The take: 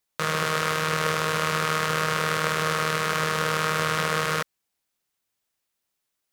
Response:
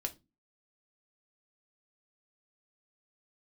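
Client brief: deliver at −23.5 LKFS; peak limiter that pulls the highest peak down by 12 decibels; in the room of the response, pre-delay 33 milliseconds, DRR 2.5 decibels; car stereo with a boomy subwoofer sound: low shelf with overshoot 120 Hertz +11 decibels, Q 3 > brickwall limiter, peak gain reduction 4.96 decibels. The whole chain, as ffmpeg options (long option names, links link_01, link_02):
-filter_complex "[0:a]alimiter=limit=-18.5dB:level=0:latency=1,asplit=2[link_01][link_02];[1:a]atrim=start_sample=2205,adelay=33[link_03];[link_02][link_03]afir=irnorm=-1:irlink=0,volume=-2.5dB[link_04];[link_01][link_04]amix=inputs=2:normalize=0,lowshelf=frequency=120:width_type=q:width=3:gain=11,volume=12dB,alimiter=limit=-10.5dB:level=0:latency=1"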